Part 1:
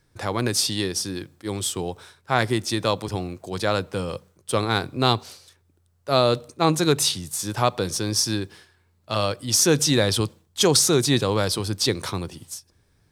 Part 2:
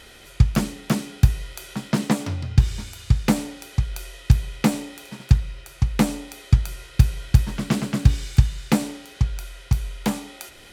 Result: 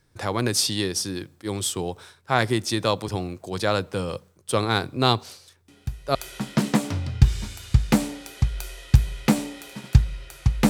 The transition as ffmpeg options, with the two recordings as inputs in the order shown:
-filter_complex "[1:a]asplit=2[s0][s1];[0:a]apad=whole_dur=10.69,atrim=end=10.69,atrim=end=6.152[s2];[s1]atrim=start=1.508:end=6.05[s3];[s0]atrim=start=1.04:end=1.51,asetpts=PTS-STARTPTS,volume=0.178,afade=t=in:d=0.004:c=hsin,afade=t=out:st=0.466:d=0.004:c=hsin,adelay=5680[s4];[s2][s3]acrossfade=d=0.004:c1=hsin:c2=hsin[s5];[s5][s4]amix=inputs=2:normalize=0"

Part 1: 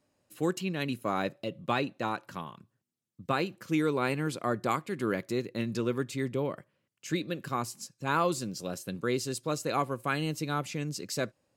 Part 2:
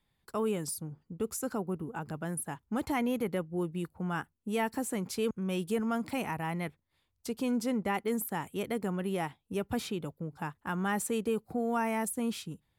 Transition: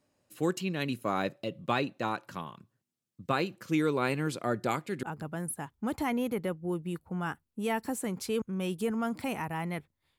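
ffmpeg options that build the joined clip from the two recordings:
-filter_complex "[0:a]asettb=1/sr,asplit=3[s0][s1][s2];[s0]atrim=end=4.424[s3];[s1]atrim=start=4.42:end=5.03,asetpts=PTS-STARTPTS,afade=t=in:d=0.004:c=qsin,afade=t=out:st=0.606:d=0.004:c=qsin,bandreject=f=1100:w=7.3[s4];[s2]atrim=start=5.026[s5];[s3][s4]acrossfade=d=0.004:c1=hsin:c2=qsin[s6];[s6][s5]acrossfade=d=0.004:c1=qsin:c2=hsin,apad=whole_dur=10.18,atrim=end=10.18,atrim=end=5.032[s7];[1:a]atrim=start=1.918:end=7.07[s8];[s7][s8]acrossfade=d=0.004:c1=hsin:c2=hsin"

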